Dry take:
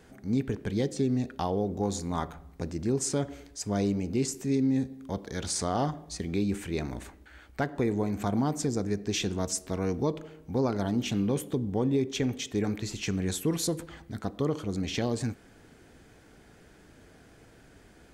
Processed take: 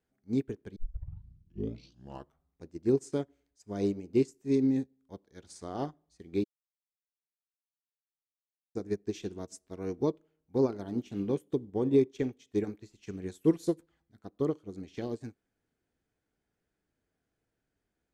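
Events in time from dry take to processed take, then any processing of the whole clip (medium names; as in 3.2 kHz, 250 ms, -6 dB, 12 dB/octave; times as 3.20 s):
0.76 s: tape start 1.70 s
6.44–8.75 s: mute
whole clip: dynamic bell 360 Hz, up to +8 dB, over -43 dBFS, Q 1.8; upward expansion 2.5:1, over -37 dBFS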